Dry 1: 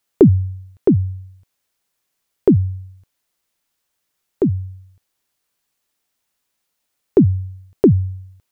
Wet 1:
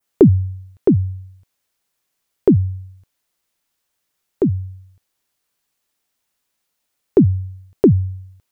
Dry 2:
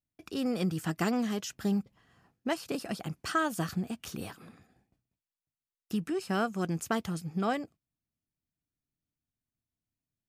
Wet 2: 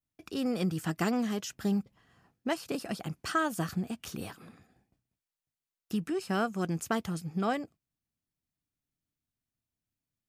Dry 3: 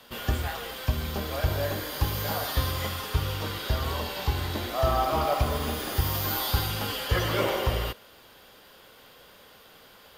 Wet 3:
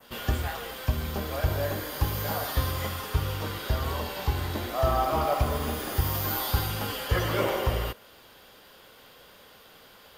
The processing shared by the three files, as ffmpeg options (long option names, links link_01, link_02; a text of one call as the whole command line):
ffmpeg -i in.wav -af "adynamicequalizer=threshold=0.00562:dfrequency=3900:dqfactor=1:tfrequency=3900:tqfactor=1:attack=5:release=100:ratio=0.375:range=2:mode=cutabove:tftype=bell" out.wav